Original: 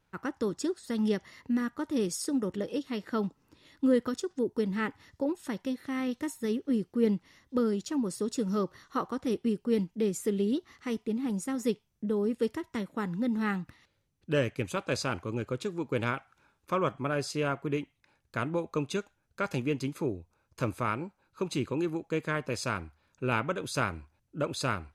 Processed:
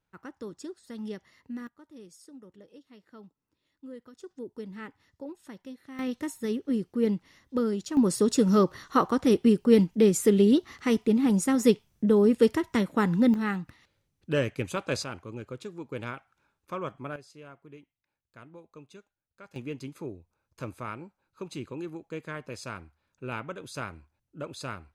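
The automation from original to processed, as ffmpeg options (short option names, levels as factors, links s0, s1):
-af "asetnsamples=n=441:p=0,asendcmd='1.67 volume volume -19dB;4.2 volume volume -10dB;5.99 volume volume 0.5dB;7.97 volume volume 8.5dB;13.34 volume volume 1dB;15.04 volume volume -6dB;17.16 volume volume -18dB;19.56 volume volume -6.5dB',volume=0.355"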